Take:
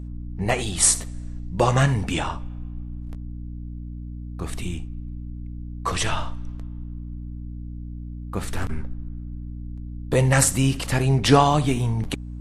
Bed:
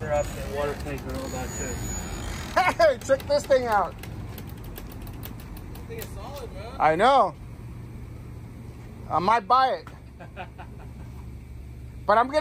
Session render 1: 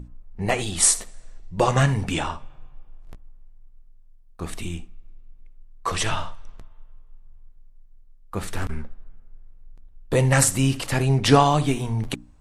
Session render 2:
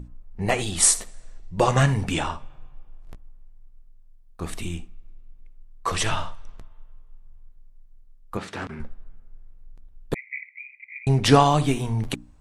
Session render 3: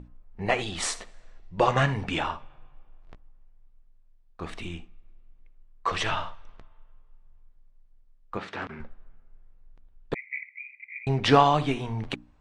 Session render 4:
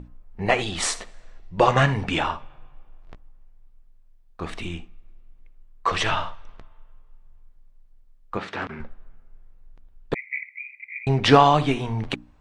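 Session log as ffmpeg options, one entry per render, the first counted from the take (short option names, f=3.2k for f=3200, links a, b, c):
-af "bandreject=f=60:t=h:w=6,bandreject=f=120:t=h:w=6,bandreject=f=180:t=h:w=6,bandreject=f=240:t=h:w=6,bandreject=f=300:t=h:w=6"
-filter_complex "[0:a]asettb=1/sr,asplit=3[a][b][c];[a]atrim=end=8.374[d];[b]atrim=start=8.37:end=8.8,asetpts=PTS-STARTPTS,afade=t=in:d=0.004:c=qsin,afade=t=out:st=0.426:d=0.004:c=qsin,highpass=160,lowpass=4.9k[e];[c]atrim=start=8.796[f];[d][e]acrossfade=d=0.004:c1=hsin:c2=qsin[g];[g][f]acrossfade=d=0.004:c1=qsin:c2=hsin,asettb=1/sr,asplit=3[h][i][j];[h]atrim=end=10.144[k];[i]atrim=start=10.14:end=11.07,asetpts=PTS-STARTPTS,afade=t=in:d=0.004:c=qsin,afade=t=out:st=0.926:d=0.004:c=qsin,asuperpass=centerf=2200:order=12:qfactor=4.6[l];[j]atrim=start=11.066[m];[k][l]acrossfade=d=0.004:c1=hsin:c2=qsin[n];[n][m]acrossfade=d=0.004:c1=qsin:c2=hsin"
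-af "lowpass=3.6k,lowshelf=f=310:g=-8"
-af "volume=4.5dB,alimiter=limit=-2dB:level=0:latency=1"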